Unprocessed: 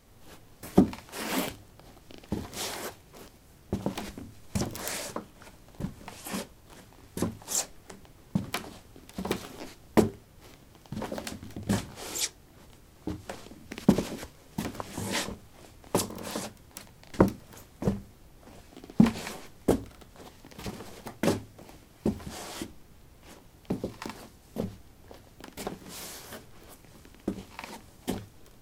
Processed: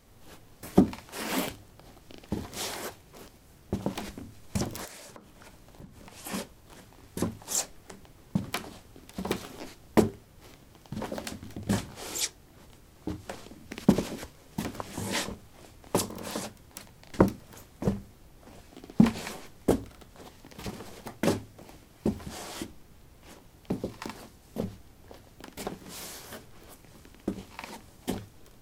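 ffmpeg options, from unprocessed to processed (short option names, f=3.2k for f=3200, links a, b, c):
-filter_complex "[0:a]asplit=3[a][b][c];[a]afade=t=out:st=4.84:d=0.02[d];[b]acompressor=threshold=-44dB:ratio=5:attack=3.2:release=140:knee=1:detection=peak,afade=t=in:st=4.84:d=0.02,afade=t=out:st=6.16:d=0.02[e];[c]afade=t=in:st=6.16:d=0.02[f];[d][e][f]amix=inputs=3:normalize=0"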